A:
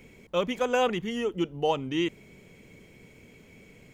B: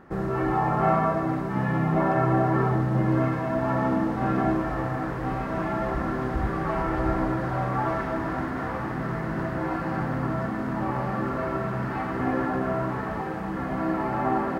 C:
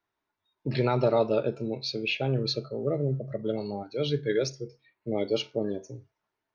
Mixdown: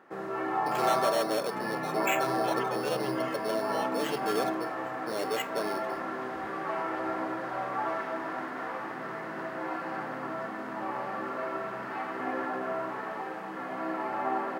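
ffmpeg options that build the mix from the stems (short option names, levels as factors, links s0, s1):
-filter_complex "[0:a]adelay=2100,volume=0.237[s0];[1:a]volume=0.631[s1];[2:a]highshelf=f=4300:g=-10,acrusher=samples=9:mix=1:aa=0.000001,asoftclip=type=tanh:threshold=0.0473,volume=1.26[s2];[s0][s1][s2]amix=inputs=3:normalize=0,highpass=380,equalizer=f=2800:w=1.5:g=2.5"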